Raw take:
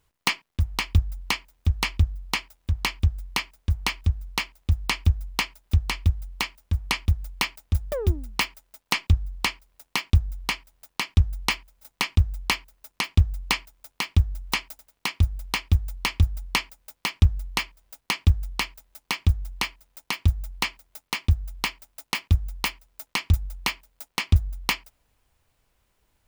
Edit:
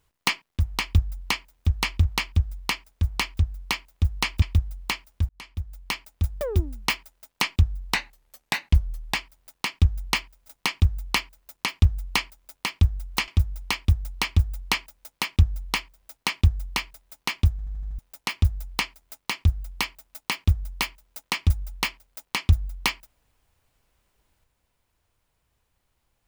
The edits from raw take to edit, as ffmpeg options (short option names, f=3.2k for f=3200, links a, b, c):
-filter_complex "[0:a]asplit=13[a][b][c][d][e][f][g][h][i][j][k][l][m];[a]atrim=end=2.032[n];[b]atrim=start=2.698:end=5.092[o];[c]atrim=start=5.928:end=6.8,asetpts=PTS-STARTPTS,afade=t=out:st=0.868:d=0.004:c=hsin[p];[d]atrim=start=6.8:end=9.454,asetpts=PTS-STARTPTS,afade=t=in:d=1.43:c=qsin[q];[e]atrim=start=9.45:end=10.5,asetpts=PTS-STARTPTS,asetrate=38367,aresample=44100,atrim=end_sample=53224,asetpts=PTS-STARTPTS[r];[f]atrim=start=10.496:end=14.632[s];[g]atrim=start=15.108:end=19.422[t];[h]atrim=start=19.338:end=19.422[u];[i]atrim=start=19.338:end=19.422[v];[j]atrim=start=19.338:end=19.422[w];[k]atrim=start=19.338:end=19.422[x];[l]atrim=start=19.338:end=19.422[y];[m]atrim=start=19.818[z];[n][o]acrossfade=d=0.004:c1=hsin:c2=hsin[aa];[p][q]concat=n=2:v=0:a=1[ab];[aa][ab]acrossfade=d=0.004:c1=hsin:c2=hsin[ac];[ac][r]acrossfade=d=0.004:c1=hsin:c2=hsin[ad];[ad][s]acrossfade=d=0.004:c1=hsin:c2=hsin[ae];[ae][t]acrossfade=d=0.004:c1=hsin:c2=hsin[af];[af][u]acrossfade=d=0.004:c1=hsin:c2=hsin[ag];[ag][v]acrossfade=d=0.004:c1=hsin:c2=hsin[ah];[ah][w]acrossfade=d=0.004:c1=hsin:c2=hsin[ai];[ai][x]acrossfade=d=0.004:c1=hsin:c2=hsin[aj];[aj][y]acrossfade=d=0.004:c1=hsin:c2=hsin[ak];[ak][z]acrossfade=d=0.004:c1=hsin:c2=hsin"